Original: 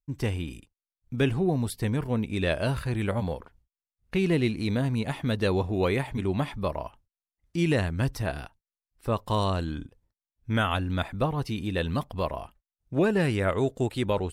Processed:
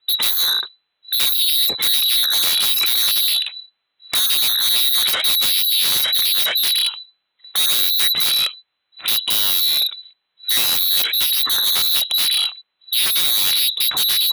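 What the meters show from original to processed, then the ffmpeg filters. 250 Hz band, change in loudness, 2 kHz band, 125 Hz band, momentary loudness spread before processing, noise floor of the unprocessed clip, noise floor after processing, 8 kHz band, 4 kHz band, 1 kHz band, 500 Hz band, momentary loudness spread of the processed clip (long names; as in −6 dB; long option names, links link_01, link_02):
below −15 dB, +13.5 dB, +7.5 dB, below −20 dB, 11 LU, below −85 dBFS, −75 dBFS, +27.5 dB, +27.0 dB, −1.0 dB, −13.0 dB, 7 LU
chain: -filter_complex "[0:a]acrossover=split=200[link_01][link_02];[link_02]acompressor=threshold=-37dB:ratio=3[link_03];[link_01][link_03]amix=inputs=2:normalize=0,lowpass=frequency=3400:width_type=q:width=0.5098,lowpass=frequency=3400:width_type=q:width=0.6013,lowpass=frequency=3400:width_type=q:width=0.9,lowpass=frequency=3400:width_type=q:width=2.563,afreqshift=-4000,asplit=2[link_04][link_05];[link_05]aeval=exprs='0.133*sin(PI/2*10*val(0)/0.133)':channel_layout=same,volume=-5dB[link_06];[link_04][link_06]amix=inputs=2:normalize=0,highpass=59,volume=7dB"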